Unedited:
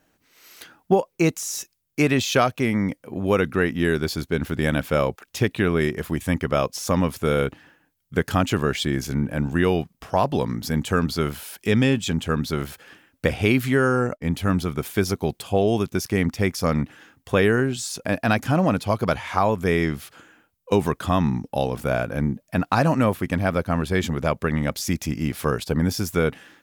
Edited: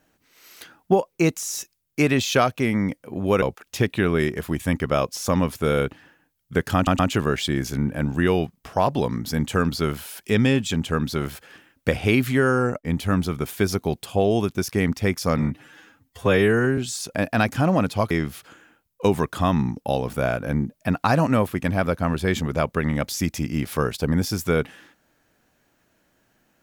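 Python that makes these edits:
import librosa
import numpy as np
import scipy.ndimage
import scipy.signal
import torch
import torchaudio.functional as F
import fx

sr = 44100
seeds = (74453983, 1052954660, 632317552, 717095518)

y = fx.edit(x, sr, fx.cut(start_s=3.42, length_s=1.61),
    fx.stutter(start_s=8.36, slice_s=0.12, count=3),
    fx.stretch_span(start_s=16.75, length_s=0.93, factor=1.5),
    fx.cut(start_s=19.01, length_s=0.77), tone=tone)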